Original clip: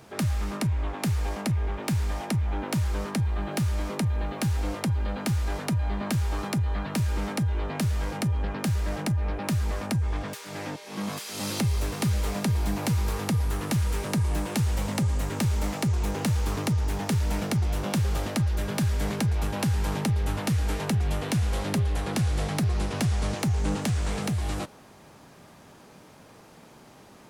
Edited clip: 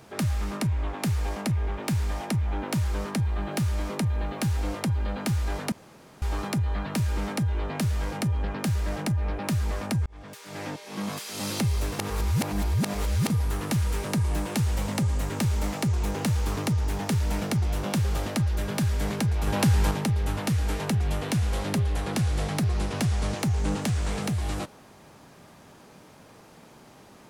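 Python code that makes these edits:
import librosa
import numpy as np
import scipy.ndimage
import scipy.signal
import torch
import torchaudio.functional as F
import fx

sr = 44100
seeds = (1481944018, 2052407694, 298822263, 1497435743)

y = fx.edit(x, sr, fx.room_tone_fill(start_s=5.72, length_s=0.5),
    fx.fade_in_span(start_s=10.06, length_s=0.58),
    fx.reverse_span(start_s=11.99, length_s=1.31),
    fx.clip_gain(start_s=19.47, length_s=0.44, db=4.5), tone=tone)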